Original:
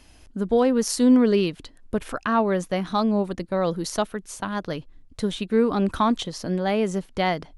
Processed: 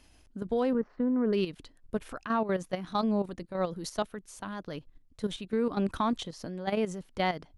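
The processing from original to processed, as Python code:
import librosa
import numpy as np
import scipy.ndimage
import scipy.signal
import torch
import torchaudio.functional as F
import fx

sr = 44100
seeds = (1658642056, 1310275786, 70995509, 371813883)

y = fx.lowpass(x, sr, hz=1700.0, slope=24, at=(0.73, 1.33))
y = fx.level_steps(y, sr, step_db=11)
y = F.gain(torch.from_numpy(y), -4.5).numpy()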